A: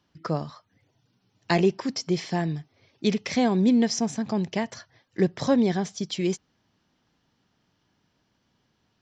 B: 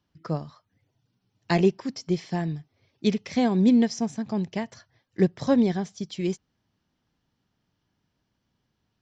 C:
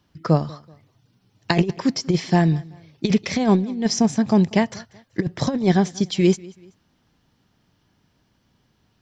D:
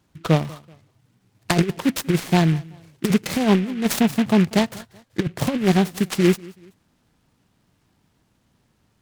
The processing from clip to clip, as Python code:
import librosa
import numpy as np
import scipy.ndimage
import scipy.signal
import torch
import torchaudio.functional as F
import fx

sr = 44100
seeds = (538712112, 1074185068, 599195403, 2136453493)

y1 = fx.low_shelf(x, sr, hz=140.0, db=8.0)
y1 = fx.upward_expand(y1, sr, threshold_db=-30.0, expansion=1.5)
y2 = fx.over_compress(y1, sr, threshold_db=-24.0, ratio=-0.5)
y2 = fx.echo_feedback(y2, sr, ms=190, feedback_pct=37, wet_db=-23.0)
y2 = F.gain(torch.from_numpy(y2), 8.0).numpy()
y3 = fx.vibrato(y2, sr, rate_hz=6.0, depth_cents=36.0)
y3 = fx.noise_mod_delay(y3, sr, seeds[0], noise_hz=2000.0, depth_ms=0.083)